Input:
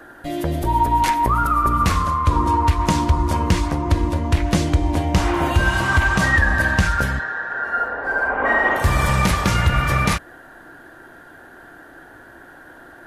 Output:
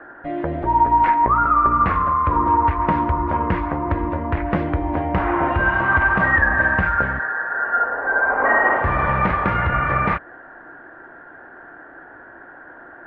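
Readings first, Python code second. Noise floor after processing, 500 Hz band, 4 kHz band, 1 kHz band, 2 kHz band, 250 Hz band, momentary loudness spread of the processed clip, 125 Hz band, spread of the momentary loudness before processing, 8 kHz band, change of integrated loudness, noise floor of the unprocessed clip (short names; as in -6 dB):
-42 dBFS, +1.0 dB, under -10 dB, +2.5 dB, +1.5 dB, -1.5 dB, 8 LU, -5.5 dB, 6 LU, under -40 dB, +0.5 dB, -44 dBFS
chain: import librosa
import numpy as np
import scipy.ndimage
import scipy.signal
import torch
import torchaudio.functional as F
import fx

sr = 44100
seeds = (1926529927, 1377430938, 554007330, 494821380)

y = scipy.signal.sosfilt(scipy.signal.butter(4, 1900.0, 'lowpass', fs=sr, output='sos'), x)
y = fx.low_shelf(y, sr, hz=260.0, db=-10.5)
y = y * librosa.db_to_amplitude(3.5)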